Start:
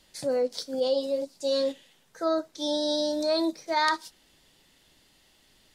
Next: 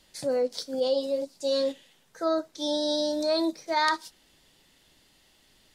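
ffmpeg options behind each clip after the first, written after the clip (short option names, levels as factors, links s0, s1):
-af anull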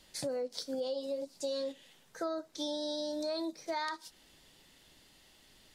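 -af "acompressor=threshold=0.02:ratio=6"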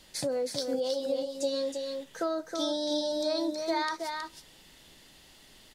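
-af "aecho=1:1:319:0.562,volume=1.78"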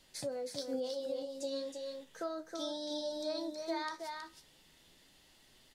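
-af "flanger=delay=7.2:depth=8.1:regen=69:speed=0.35:shape=triangular,volume=0.631"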